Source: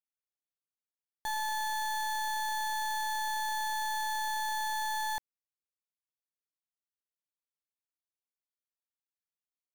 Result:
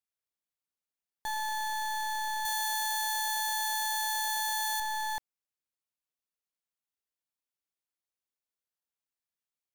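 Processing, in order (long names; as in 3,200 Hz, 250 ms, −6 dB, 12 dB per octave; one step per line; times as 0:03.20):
0:02.45–0:04.80: spectral tilt +2.5 dB per octave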